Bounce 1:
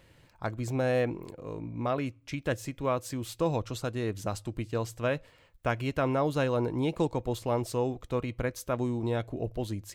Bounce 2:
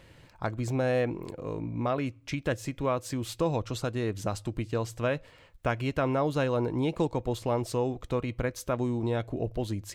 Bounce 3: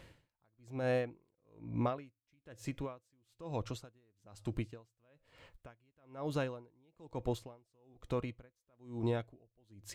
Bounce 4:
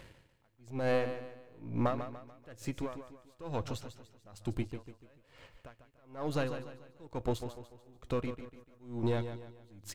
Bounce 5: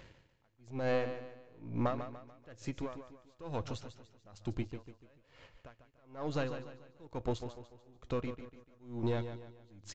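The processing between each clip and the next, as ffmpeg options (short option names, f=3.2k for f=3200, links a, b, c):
-filter_complex "[0:a]asplit=2[a][b];[b]acompressor=threshold=-35dB:ratio=6,volume=2.5dB[c];[a][c]amix=inputs=2:normalize=0,highshelf=f=11k:g=-7,volume=-2.5dB"
-af "alimiter=limit=-20.5dB:level=0:latency=1:release=471,aeval=exprs='val(0)*pow(10,-39*(0.5-0.5*cos(2*PI*1.1*n/s))/20)':c=same,volume=-1.5dB"
-filter_complex "[0:a]aeval=exprs='if(lt(val(0),0),0.447*val(0),val(0))':c=same,asplit=2[a][b];[b]aecho=0:1:146|292|438|584:0.316|0.126|0.0506|0.0202[c];[a][c]amix=inputs=2:normalize=0,volume=5.5dB"
-af "aresample=16000,aresample=44100,volume=-2dB"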